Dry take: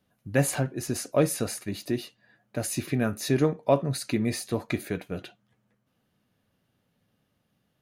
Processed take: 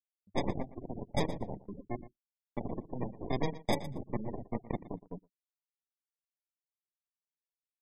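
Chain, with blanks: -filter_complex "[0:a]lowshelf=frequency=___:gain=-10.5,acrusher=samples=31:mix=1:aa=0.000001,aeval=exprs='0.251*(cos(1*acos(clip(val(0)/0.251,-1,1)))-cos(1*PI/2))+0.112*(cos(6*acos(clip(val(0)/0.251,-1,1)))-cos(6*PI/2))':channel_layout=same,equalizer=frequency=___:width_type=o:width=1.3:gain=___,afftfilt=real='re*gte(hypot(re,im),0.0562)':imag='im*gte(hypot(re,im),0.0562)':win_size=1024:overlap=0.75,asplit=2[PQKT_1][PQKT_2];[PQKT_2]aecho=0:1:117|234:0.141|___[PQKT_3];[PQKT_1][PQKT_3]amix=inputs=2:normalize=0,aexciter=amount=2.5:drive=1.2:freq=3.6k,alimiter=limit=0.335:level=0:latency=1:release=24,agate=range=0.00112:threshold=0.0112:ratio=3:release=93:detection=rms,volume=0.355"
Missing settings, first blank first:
290, 180, 5.5, 0.0226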